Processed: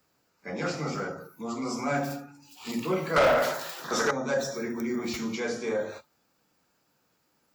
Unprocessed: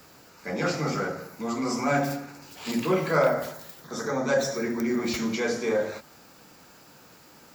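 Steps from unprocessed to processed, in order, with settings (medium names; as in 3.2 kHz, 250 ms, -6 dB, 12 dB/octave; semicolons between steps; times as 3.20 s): 3.16–4.11 s: overdrive pedal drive 23 dB, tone 4.2 kHz, clips at -10 dBFS; spectral noise reduction 15 dB; trim -4 dB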